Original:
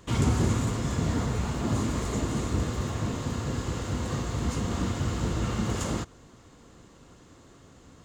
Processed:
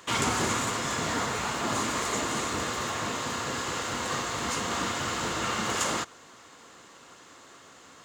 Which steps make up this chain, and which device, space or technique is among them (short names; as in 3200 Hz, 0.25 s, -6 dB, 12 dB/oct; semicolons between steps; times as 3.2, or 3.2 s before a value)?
filter by subtraction (in parallel: LPF 1400 Hz 12 dB/oct + phase invert); on the sum: gain +7 dB